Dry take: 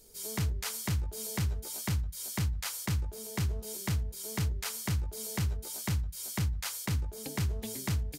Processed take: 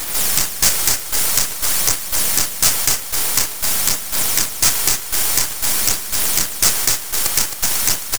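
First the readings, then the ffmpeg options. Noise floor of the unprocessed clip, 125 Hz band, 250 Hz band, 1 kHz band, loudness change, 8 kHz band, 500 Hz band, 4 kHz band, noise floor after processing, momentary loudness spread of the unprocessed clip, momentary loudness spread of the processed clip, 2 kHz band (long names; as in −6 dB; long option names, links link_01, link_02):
−44 dBFS, −3.5 dB, +4.0 dB, +17.0 dB, +18.5 dB, +24.0 dB, +11.5 dB, +21.5 dB, −28 dBFS, 3 LU, 3 LU, +18.0 dB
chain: -filter_complex "[0:a]acrossover=split=4400[link_01][link_02];[link_02]acompressor=threshold=-53dB:ratio=4:attack=1:release=60[link_03];[link_01][link_03]amix=inputs=2:normalize=0,highpass=frequency=1200:width=0.5412,highpass=frequency=1200:width=1.3066,aemphasis=mode=reproduction:type=cd,asplit=2[link_04][link_05];[link_05]acompressor=threshold=-57dB:ratio=6,volume=1dB[link_06];[link_04][link_06]amix=inputs=2:normalize=0,aeval=exprs='0.0708*(cos(1*acos(clip(val(0)/0.0708,-1,1)))-cos(1*PI/2))+0.0355*(cos(2*acos(clip(val(0)/0.0708,-1,1)))-cos(2*PI/2))+0.00447*(cos(7*acos(clip(val(0)/0.0708,-1,1)))-cos(7*PI/2))+0.0224*(cos(8*acos(clip(val(0)/0.0708,-1,1)))-cos(8*PI/2))':channel_layout=same,aexciter=amount=15.6:drive=6:freq=5200,aphaser=in_gain=1:out_gain=1:delay=2.6:decay=0.4:speed=0.49:type=sinusoidal,acrusher=bits=4:dc=4:mix=0:aa=0.000001,apsyclip=19dB,asoftclip=type=tanh:threshold=-6.5dB,aecho=1:1:266:0.355"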